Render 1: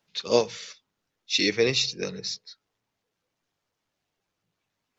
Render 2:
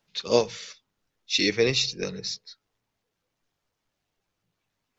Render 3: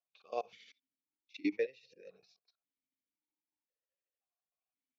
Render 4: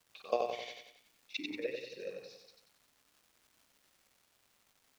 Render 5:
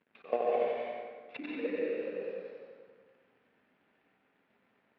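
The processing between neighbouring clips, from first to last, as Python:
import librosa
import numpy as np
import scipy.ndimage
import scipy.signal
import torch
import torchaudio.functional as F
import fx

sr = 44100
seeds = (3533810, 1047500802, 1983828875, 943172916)

y1 = fx.low_shelf(x, sr, hz=61.0, db=11.0)
y2 = fx.level_steps(y1, sr, step_db=22)
y2 = y2 * (1.0 - 0.46 / 2.0 + 0.46 / 2.0 * np.cos(2.0 * np.pi * 13.0 * (np.arange(len(y2)) / sr)))
y2 = fx.vowel_held(y2, sr, hz=1.9)
y2 = y2 * librosa.db_to_amplitude(1.0)
y3 = fx.over_compress(y2, sr, threshold_db=-38.0, ratio=-0.5)
y3 = fx.dmg_crackle(y3, sr, seeds[0], per_s=450.0, level_db=-62.0)
y3 = fx.echo_feedback(y3, sr, ms=92, feedback_pct=47, wet_db=-4.5)
y3 = y3 * librosa.db_to_amplitude(5.5)
y4 = fx.cvsd(y3, sr, bps=32000)
y4 = fx.cabinet(y4, sr, low_hz=170.0, low_slope=12, high_hz=2400.0, hz=(240.0, 430.0, 1100.0), db=(7, 3, -4))
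y4 = fx.rev_plate(y4, sr, seeds[1], rt60_s=1.6, hf_ratio=0.6, predelay_ms=115, drr_db=-3.0)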